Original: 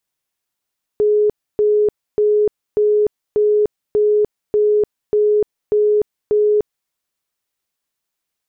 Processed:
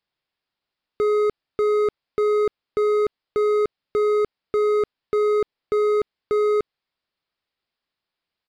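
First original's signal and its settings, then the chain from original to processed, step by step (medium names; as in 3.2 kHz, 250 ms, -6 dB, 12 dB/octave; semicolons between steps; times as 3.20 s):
tone bursts 420 Hz, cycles 125, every 0.59 s, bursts 10, -11 dBFS
resampled via 11.025 kHz; overload inside the chain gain 18 dB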